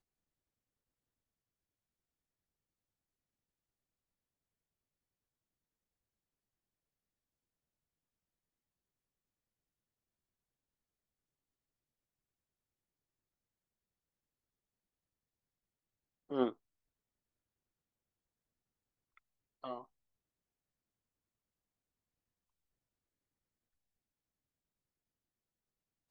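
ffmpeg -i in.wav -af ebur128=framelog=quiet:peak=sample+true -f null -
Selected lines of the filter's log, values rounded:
Integrated loudness:
  I:         -39.5 LUFS
  Threshold: -50.7 LUFS
Loudness range:
  LRA:        10.6 LU
  Threshold: -67.8 LUFS
  LRA low:   -55.6 LUFS
  LRA high:  -45.0 LUFS
Sample peak:
  Peak:      -20.2 dBFS
True peak:
  Peak:      -20.2 dBFS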